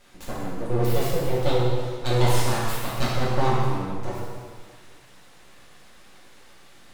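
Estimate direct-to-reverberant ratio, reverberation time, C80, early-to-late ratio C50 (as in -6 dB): -7.5 dB, 1.8 s, 0.5 dB, -1.5 dB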